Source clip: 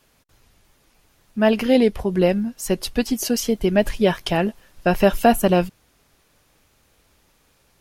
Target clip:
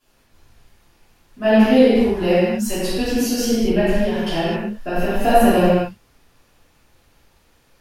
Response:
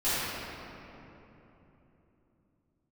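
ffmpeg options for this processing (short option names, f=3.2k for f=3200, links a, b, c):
-filter_complex "[0:a]asettb=1/sr,asplit=3[a][b][c];[a]atrim=end=1.944[d];[b]atrim=start=1.94:end=2.76,asetpts=PTS-STARTPTS,afade=t=in:d=0.004:c=qsin,afade=t=out:st=0.816:d=0.004:c=qsin,tiltshelf=f=660:g=-3[e];[c]atrim=start=2.756[f];[d][e]acrossfade=d=0.004:c1=hsin:c2=qsin[g];[g][f]acrossfade=d=0.004:c1=qsin:c2=hsin,asettb=1/sr,asplit=3[h][i][j];[h]atrim=end=3.794[k];[i]atrim=start=3.79:end=5.21,asetpts=PTS-STARTPTS,afade=t=in:d=0.004:c=qsin,afade=t=out:st=1.416:d=0.004:c=qsin,acompressor=threshold=-19dB:ratio=6[l];[j]atrim=start=5.206[m];[k][l]acrossfade=d=0.004:c1=hsin:c2=qsin[n];[n][m]acrossfade=d=0.004:c1=qsin:c2=hsin[o];[1:a]atrim=start_sample=2205,afade=t=out:st=0.33:d=0.01,atrim=end_sample=14994[p];[o][p]afir=irnorm=-1:irlink=0,volume=-8.5dB"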